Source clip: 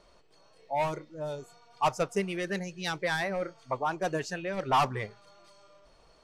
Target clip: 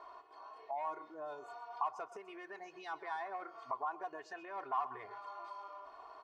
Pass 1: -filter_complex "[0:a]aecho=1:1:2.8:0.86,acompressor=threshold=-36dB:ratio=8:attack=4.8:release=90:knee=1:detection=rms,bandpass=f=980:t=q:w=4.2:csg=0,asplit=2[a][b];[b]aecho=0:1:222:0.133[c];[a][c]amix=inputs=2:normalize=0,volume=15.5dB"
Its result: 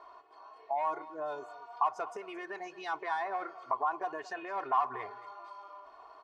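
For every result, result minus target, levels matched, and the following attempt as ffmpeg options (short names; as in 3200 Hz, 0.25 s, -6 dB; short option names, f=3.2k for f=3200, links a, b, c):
echo 95 ms late; compressor: peak gain reduction -7.5 dB
-filter_complex "[0:a]aecho=1:1:2.8:0.86,acompressor=threshold=-36dB:ratio=8:attack=4.8:release=90:knee=1:detection=rms,bandpass=f=980:t=q:w=4.2:csg=0,asplit=2[a][b];[b]aecho=0:1:127:0.133[c];[a][c]amix=inputs=2:normalize=0,volume=15.5dB"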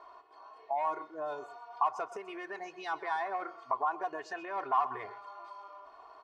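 compressor: peak gain reduction -7.5 dB
-filter_complex "[0:a]aecho=1:1:2.8:0.86,acompressor=threshold=-44.5dB:ratio=8:attack=4.8:release=90:knee=1:detection=rms,bandpass=f=980:t=q:w=4.2:csg=0,asplit=2[a][b];[b]aecho=0:1:127:0.133[c];[a][c]amix=inputs=2:normalize=0,volume=15.5dB"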